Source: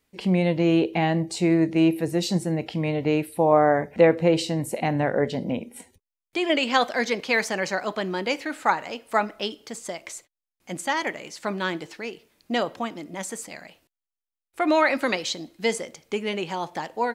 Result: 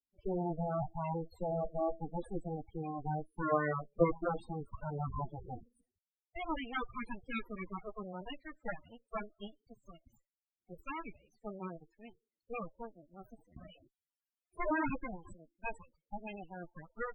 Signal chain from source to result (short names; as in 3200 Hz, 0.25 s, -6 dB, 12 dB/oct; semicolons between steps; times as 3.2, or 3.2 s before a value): added harmonics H 3 -9 dB, 8 -19 dB, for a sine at -4.5 dBFS; loudest bins only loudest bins 8; 13.56–14.96 fast leveller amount 50%; gain -3.5 dB